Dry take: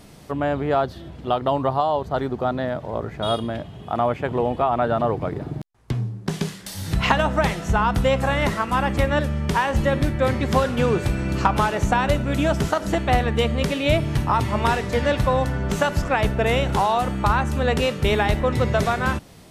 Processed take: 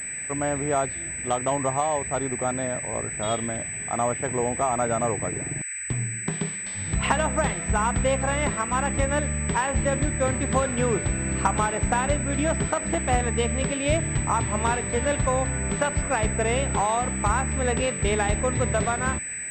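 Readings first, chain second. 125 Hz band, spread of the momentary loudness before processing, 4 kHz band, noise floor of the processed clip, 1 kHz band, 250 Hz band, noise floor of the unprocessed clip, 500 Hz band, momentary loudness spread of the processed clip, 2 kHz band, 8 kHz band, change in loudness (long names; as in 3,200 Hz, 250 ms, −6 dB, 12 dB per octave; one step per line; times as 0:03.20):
−4.0 dB, 8 LU, −7.0 dB, −33 dBFS, −4.0 dB, −4.0 dB, −41 dBFS, −4.0 dB, 5 LU, −2.5 dB, +14.5 dB, −3.0 dB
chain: noise in a band 1,600–2,500 Hz −37 dBFS
switching amplifier with a slow clock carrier 8,000 Hz
level −4 dB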